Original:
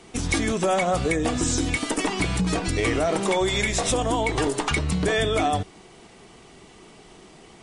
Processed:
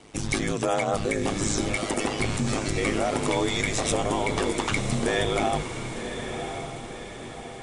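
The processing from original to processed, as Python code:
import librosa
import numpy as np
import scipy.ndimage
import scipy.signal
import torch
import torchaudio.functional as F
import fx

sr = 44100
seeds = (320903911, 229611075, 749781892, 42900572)

y = x * np.sin(2.0 * np.pi * 52.0 * np.arange(len(x)) / sr)
y = fx.echo_diffused(y, sr, ms=1072, feedback_pct=51, wet_db=-8)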